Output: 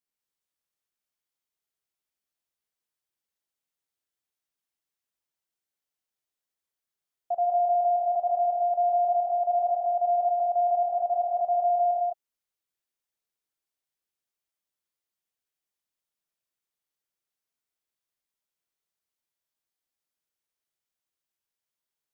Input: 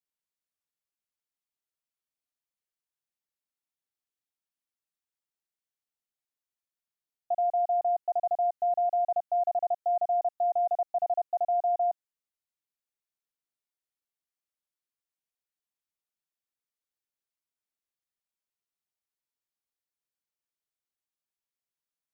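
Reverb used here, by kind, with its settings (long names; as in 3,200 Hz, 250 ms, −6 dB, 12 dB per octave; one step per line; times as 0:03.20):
reverb whose tail is shaped and stops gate 230 ms rising, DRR 0 dB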